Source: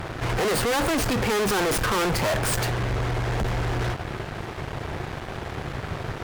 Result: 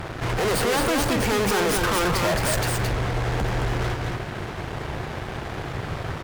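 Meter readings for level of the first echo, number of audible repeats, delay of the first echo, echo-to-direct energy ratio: −4.0 dB, 1, 219 ms, −4.0 dB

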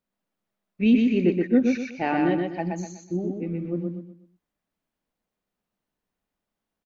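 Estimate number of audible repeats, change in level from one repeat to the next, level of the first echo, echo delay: 4, −9.5 dB, −3.5 dB, 124 ms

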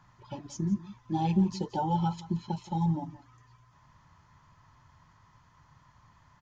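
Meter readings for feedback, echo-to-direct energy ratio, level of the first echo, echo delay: repeats not evenly spaced, −17.5 dB, −17.5 dB, 172 ms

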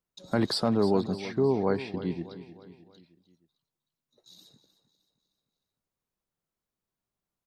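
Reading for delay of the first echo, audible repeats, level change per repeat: 308 ms, 4, −6.5 dB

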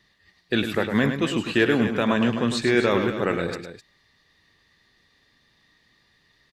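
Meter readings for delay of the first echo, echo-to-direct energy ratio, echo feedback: 104 ms, −6.5 dB, repeats not evenly spaced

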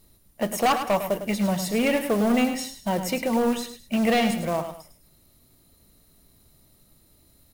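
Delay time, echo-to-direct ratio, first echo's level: 104 ms, −9.0 dB, −9.5 dB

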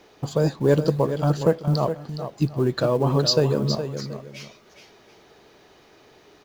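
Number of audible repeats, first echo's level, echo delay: 2, −9.5 dB, 416 ms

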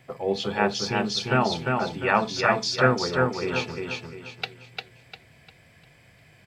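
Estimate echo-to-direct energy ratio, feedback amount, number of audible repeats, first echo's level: −3.0 dB, 35%, 4, −3.5 dB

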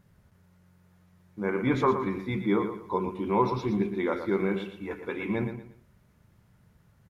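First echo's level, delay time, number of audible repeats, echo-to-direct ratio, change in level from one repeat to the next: −9.0 dB, 117 ms, 3, −8.5 dB, −10.5 dB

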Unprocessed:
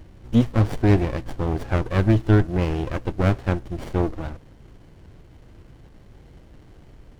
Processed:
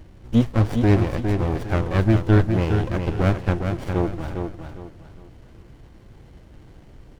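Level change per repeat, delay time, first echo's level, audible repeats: −10.5 dB, 408 ms, −6.0 dB, 3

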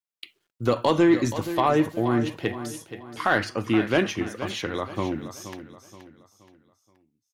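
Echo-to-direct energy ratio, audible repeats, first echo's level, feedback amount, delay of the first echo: −11.5 dB, 3, −12.0 dB, 39%, 475 ms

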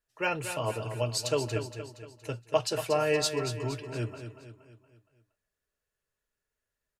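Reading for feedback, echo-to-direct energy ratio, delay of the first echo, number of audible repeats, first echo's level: 48%, −8.5 dB, 234 ms, 5, −9.5 dB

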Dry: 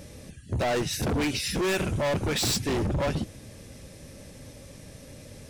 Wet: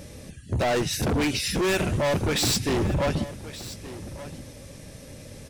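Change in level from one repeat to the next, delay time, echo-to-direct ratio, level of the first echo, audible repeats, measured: repeats not evenly spaced, 1,173 ms, −15.5 dB, −15.5 dB, 1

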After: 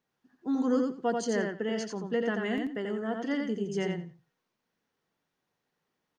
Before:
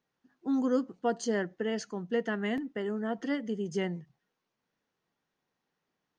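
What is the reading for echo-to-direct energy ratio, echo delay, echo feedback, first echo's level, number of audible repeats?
−4.0 dB, 87 ms, 17%, −4.0 dB, 3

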